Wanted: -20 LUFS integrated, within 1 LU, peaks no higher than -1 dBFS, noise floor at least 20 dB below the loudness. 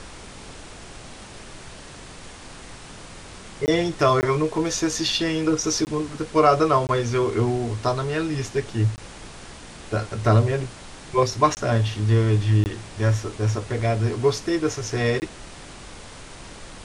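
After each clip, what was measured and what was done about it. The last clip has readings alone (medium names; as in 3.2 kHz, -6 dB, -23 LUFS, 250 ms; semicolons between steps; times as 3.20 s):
dropouts 8; longest dropout 19 ms; noise floor -42 dBFS; noise floor target -43 dBFS; loudness -22.5 LUFS; peak level -4.5 dBFS; loudness target -20.0 LUFS
-> interpolate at 3.66/4.21/5.85/6.87/8.96/11.55/12.64/15.20 s, 19 ms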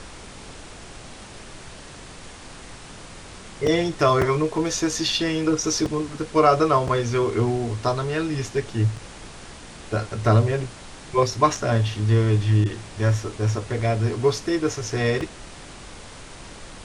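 dropouts 0; noise floor -42 dBFS; noise floor target -43 dBFS
-> noise print and reduce 6 dB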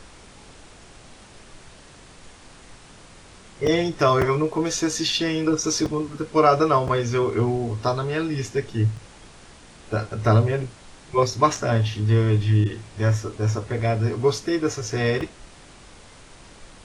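noise floor -48 dBFS; loudness -22.5 LUFS; peak level -4.5 dBFS; loudness target -20.0 LUFS
-> trim +2.5 dB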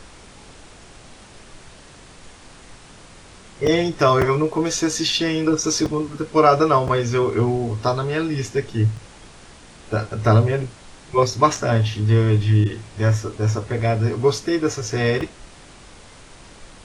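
loudness -20.0 LUFS; peak level -2.0 dBFS; noise floor -45 dBFS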